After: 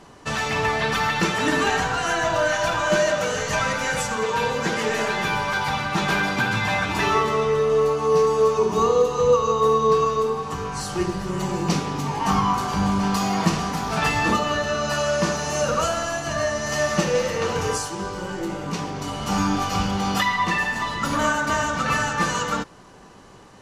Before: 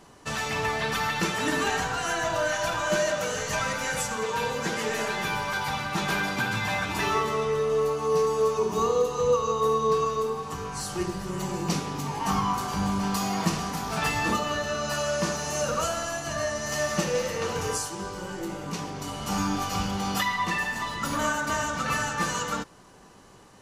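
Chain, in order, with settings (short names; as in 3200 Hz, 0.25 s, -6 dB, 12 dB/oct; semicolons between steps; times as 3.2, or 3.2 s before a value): high shelf 9200 Hz -11.5 dB; gain +5.5 dB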